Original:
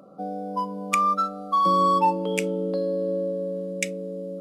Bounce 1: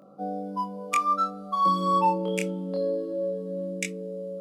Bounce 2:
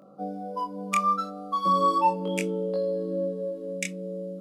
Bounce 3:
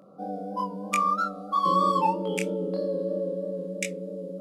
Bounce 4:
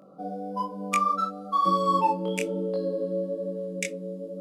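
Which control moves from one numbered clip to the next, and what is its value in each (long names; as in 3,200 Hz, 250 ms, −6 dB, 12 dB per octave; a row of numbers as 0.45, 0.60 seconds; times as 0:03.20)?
chorus effect, speed: 0.23, 0.36, 3.1, 1.1 Hertz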